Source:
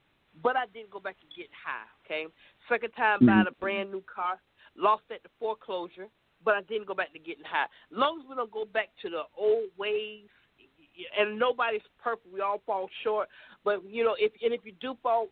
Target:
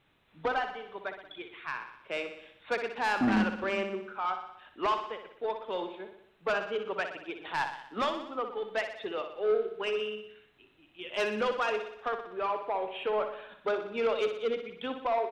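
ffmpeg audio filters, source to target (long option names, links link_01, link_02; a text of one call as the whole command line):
ffmpeg -i in.wav -filter_complex "[0:a]asoftclip=type=tanh:threshold=-23.5dB,asplit=2[link_01][link_02];[link_02]aecho=0:1:61|122|183|244|305|366|427:0.376|0.218|0.126|0.0733|0.0425|0.0247|0.0143[link_03];[link_01][link_03]amix=inputs=2:normalize=0" out.wav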